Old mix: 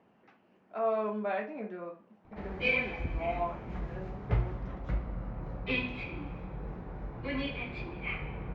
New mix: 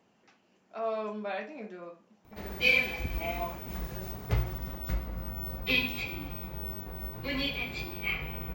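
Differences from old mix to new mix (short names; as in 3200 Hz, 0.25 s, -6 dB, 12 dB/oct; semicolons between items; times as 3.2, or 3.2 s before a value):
speech -3.0 dB; master: remove LPF 2000 Hz 12 dB/oct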